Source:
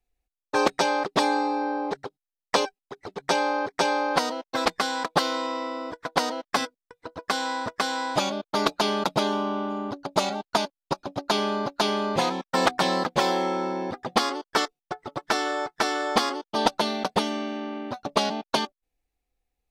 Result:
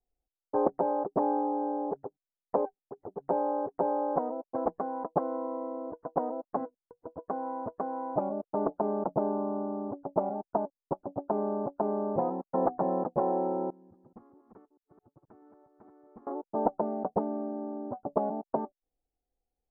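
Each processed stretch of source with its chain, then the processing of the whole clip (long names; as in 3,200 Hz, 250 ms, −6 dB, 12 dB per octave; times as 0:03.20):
0:13.70–0:16.27: delay that plays each chunk backwards 215 ms, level −6.5 dB + guitar amp tone stack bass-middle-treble 6-0-2
whole clip: inverse Chebyshev low-pass filter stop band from 3,600 Hz, stop band 70 dB; low-shelf EQ 200 Hz −6 dB; level −1.5 dB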